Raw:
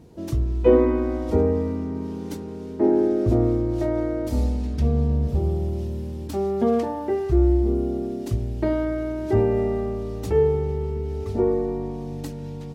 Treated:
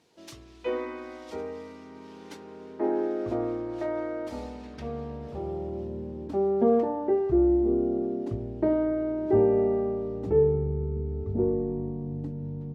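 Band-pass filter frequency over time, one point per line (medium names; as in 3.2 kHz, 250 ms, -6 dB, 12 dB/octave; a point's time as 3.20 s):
band-pass filter, Q 0.66
1.77 s 3.5 kHz
2.63 s 1.4 kHz
5.23 s 1.4 kHz
5.98 s 450 Hz
10.03 s 450 Hz
10.69 s 150 Hz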